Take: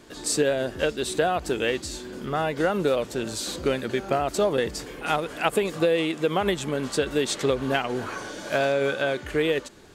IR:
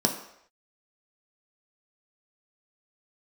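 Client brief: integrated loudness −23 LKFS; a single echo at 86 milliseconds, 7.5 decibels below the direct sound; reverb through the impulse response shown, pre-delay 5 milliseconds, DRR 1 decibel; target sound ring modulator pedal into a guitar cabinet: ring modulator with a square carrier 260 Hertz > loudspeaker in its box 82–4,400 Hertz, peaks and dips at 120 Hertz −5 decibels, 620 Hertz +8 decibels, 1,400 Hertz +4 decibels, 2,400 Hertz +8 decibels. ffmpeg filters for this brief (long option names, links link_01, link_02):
-filter_complex "[0:a]aecho=1:1:86:0.422,asplit=2[link_01][link_02];[1:a]atrim=start_sample=2205,adelay=5[link_03];[link_02][link_03]afir=irnorm=-1:irlink=0,volume=-12dB[link_04];[link_01][link_04]amix=inputs=2:normalize=0,aeval=exprs='val(0)*sgn(sin(2*PI*260*n/s))':channel_layout=same,highpass=82,equalizer=frequency=120:width_type=q:width=4:gain=-5,equalizer=frequency=620:width_type=q:width=4:gain=8,equalizer=frequency=1400:width_type=q:width=4:gain=4,equalizer=frequency=2400:width_type=q:width=4:gain=8,lowpass=frequency=4400:width=0.5412,lowpass=frequency=4400:width=1.3066,volume=-5.5dB"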